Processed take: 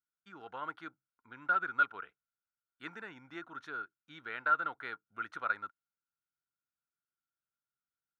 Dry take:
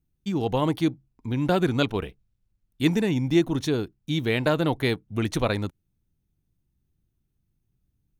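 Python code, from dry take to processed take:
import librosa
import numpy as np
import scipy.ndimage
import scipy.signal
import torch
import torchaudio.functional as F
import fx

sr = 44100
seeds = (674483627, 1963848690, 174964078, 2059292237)

y = fx.bandpass_q(x, sr, hz=1400.0, q=16.0)
y = y * 10.0 ** (8.5 / 20.0)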